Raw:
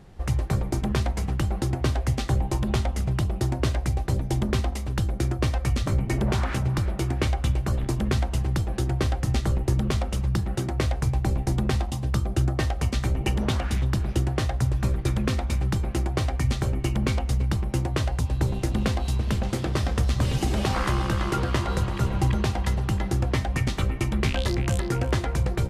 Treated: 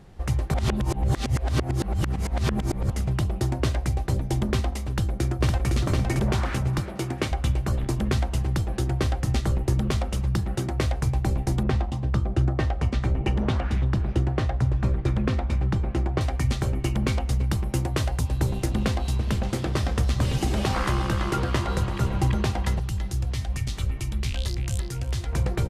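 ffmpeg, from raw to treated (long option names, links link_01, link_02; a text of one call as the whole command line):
ffmpeg -i in.wav -filter_complex "[0:a]asplit=2[link_01][link_02];[link_02]afade=type=in:start_time=4.89:duration=0.01,afade=type=out:start_time=5.68:duration=0.01,aecho=0:1:510|1020|1530|2040:0.707946|0.176986|0.0442466|0.0110617[link_03];[link_01][link_03]amix=inputs=2:normalize=0,asettb=1/sr,asplit=3[link_04][link_05][link_06];[link_04]atrim=end=6.804[link_07];[link_05]atrim=start=6.8:end=7.32,asetpts=PTS-STARTPTS,afade=type=in:duration=0.004:curve=qsin,afade=type=out:start_time=0.516:duration=0.004:curve=qsin,highpass=130[link_08];[link_06]atrim=start=7.316[link_09];[link_07][link_08]acrossfade=duration=0.004:curve1=hsin:curve2=qsin[link_10];[link_10][link_09]acrossfade=duration=0.004:curve1=qsin:curve2=hsin,asettb=1/sr,asplit=3[link_11][link_12][link_13];[link_11]atrim=end=11.634[link_14];[link_12]atrim=start=11.63:end=16.21,asetpts=PTS-STARTPTS,afade=type=in:duration=0.004:curve=qsin,afade=type=out:start_time=4.576:duration=0.004:curve=qsin,aemphasis=mode=reproduction:type=75fm[link_15];[link_13]atrim=start=16.206[link_16];[link_14][link_15]acrossfade=duration=0.004:curve1=hsin:curve2=qsin[link_17];[link_17][link_16]acrossfade=duration=0.004:curve1=qsin:curve2=hsin,asettb=1/sr,asplit=3[link_18][link_19][link_20];[link_18]atrim=end=17.504[link_21];[link_19]atrim=start=17.5:end=18.66,asetpts=PTS-STARTPTS,afade=type=in:duration=0.004:curve=qsin,afade=type=out:start_time=1.156:duration=0.004:curve=qsin,highshelf=frequency=9000:gain=7.5[link_22];[link_20]atrim=start=18.656[link_23];[link_21][link_22]acrossfade=duration=0.004:curve1=hsin:curve2=qsin[link_24];[link_24][link_23]acrossfade=duration=0.004:curve1=qsin:curve2=hsin,asettb=1/sr,asplit=3[link_25][link_26][link_27];[link_25]atrim=end=22.794[link_28];[link_26]atrim=start=22.79:end=25.33,asetpts=PTS-STARTPTS,afade=type=in:duration=0.004:curve=qsin,afade=type=out:start_time=2.536:duration=0.004:curve=qsin,acrossover=split=120|3000[link_29][link_30][link_31];[link_30]acompressor=threshold=-40dB:ratio=4:attack=3.2:release=140:knee=2.83:detection=peak[link_32];[link_29][link_32][link_31]amix=inputs=3:normalize=0[link_33];[link_27]atrim=start=25.326[link_34];[link_28][link_33]acrossfade=duration=0.004:curve1=hsin:curve2=qsin[link_35];[link_35][link_34]acrossfade=duration=0.004:curve1=qsin:curve2=hsin,asplit=3[link_36][link_37][link_38];[link_36]atrim=end=0.542[link_39];[link_37]atrim=start=0.538:end=2.902,asetpts=PTS-STARTPTS,areverse[link_40];[link_38]atrim=start=2.898[link_41];[link_39][link_40]acrossfade=duration=0.004:curve1=hsin:curve2=hsin[link_42];[link_42][link_41]acrossfade=duration=0.004:curve1=hsin:curve2=hsin" out.wav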